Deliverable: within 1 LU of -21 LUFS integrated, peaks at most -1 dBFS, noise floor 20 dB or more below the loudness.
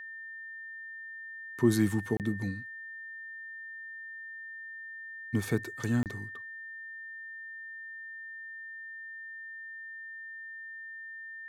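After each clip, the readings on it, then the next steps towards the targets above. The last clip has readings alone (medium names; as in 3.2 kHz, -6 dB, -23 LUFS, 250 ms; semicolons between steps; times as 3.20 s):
dropouts 2; longest dropout 28 ms; steady tone 1.8 kHz; tone level -41 dBFS; loudness -36.5 LUFS; peak level -12.5 dBFS; loudness target -21.0 LUFS
-> interpolate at 2.17/6.03 s, 28 ms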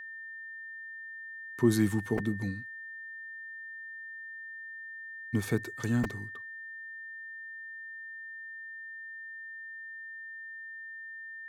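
dropouts 0; steady tone 1.8 kHz; tone level -41 dBFS
-> band-stop 1.8 kHz, Q 30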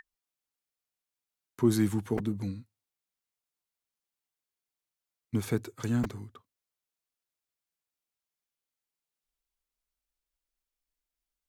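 steady tone not found; loudness -31.0 LUFS; peak level -13.0 dBFS; loudness target -21.0 LUFS
-> trim +10 dB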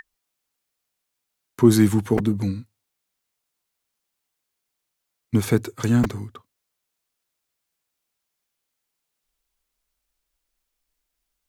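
loudness -21.0 LUFS; peak level -3.0 dBFS; noise floor -81 dBFS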